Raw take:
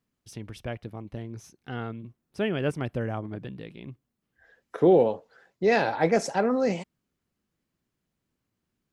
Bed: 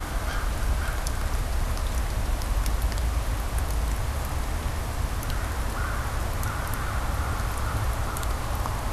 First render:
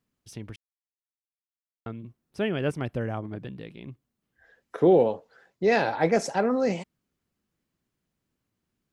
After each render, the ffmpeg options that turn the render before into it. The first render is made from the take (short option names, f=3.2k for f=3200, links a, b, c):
-filter_complex "[0:a]asplit=3[a][b][c];[a]atrim=end=0.56,asetpts=PTS-STARTPTS,afade=t=out:st=0.556:d=0.004:c=hsin[d];[b]atrim=start=0.56:end=1.86,asetpts=PTS-STARTPTS,volume=0[e];[c]atrim=start=1.86,asetpts=PTS-STARTPTS,afade=t=in:d=0.004:c=hsin[f];[d][e][f]concat=n=3:v=0:a=1"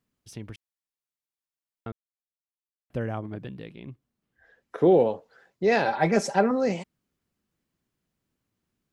-filter_complex "[0:a]asettb=1/sr,asplit=3[a][b][c];[a]atrim=end=3.704[d];[b]atrim=start=3.7:end=4.8,asetpts=PTS-STARTPTS,afade=t=in:d=0.004:c=qsin,afade=t=out:st=1.096:d=0.004:c=qsin,highshelf=f=4.9k:g=-5[e];[c]atrim=start=4.796[f];[d][e]acrossfade=d=0.004:c1=hsin:c2=qsin[g];[g][f]acrossfade=d=0.004:c1=qsin:c2=hsin,asettb=1/sr,asplit=3[h][i][j];[h]atrim=end=5.854[k];[i]atrim=start=5.85:end=6.51,asetpts=PTS-STARTPTS,afade=t=in:d=0.004:c=qsin,afade=t=out:st=0.656:d=0.004:c=qsin,aecho=1:1:5.1:0.65,atrim=end_sample=29106[l];[j]atrim=start=6.506[m];[k][l]acrossfade=d=0.004:c1=hsin:c2=qsin[n];[n][m]acrossfade=d=0.004:c1=qsin:c2=hsin,asplit=3[o][p][q];[o]atrim=end=1.92,asetpts=PTS-STARTPTS,afade=t=out:st=1.916:d=0.004:c=hsin[r];[p]atrim=start=1.92:end=2.9,asetpts=PTS-STARTPTS,volume=0[s];[q]atrim=start=2.9,asetpts=PTS-STARTPTS,afade=t=in:d=0.004:c=hsin[t];[r][s][t]concat=n=3:v=0:a=1"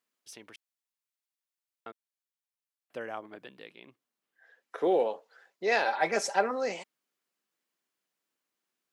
-af "highpass=340,lowshelf=f=500:g=-10"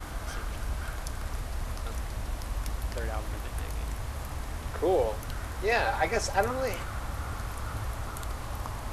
-filter_complex "[1:a]volume=-7.5dB[a];[0:a][a]amix=inputs=2:normalize=0"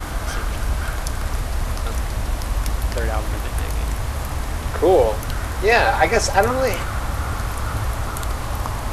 -af "volume=11dB,alimiter=limit=-2dB:level=0:latency=1"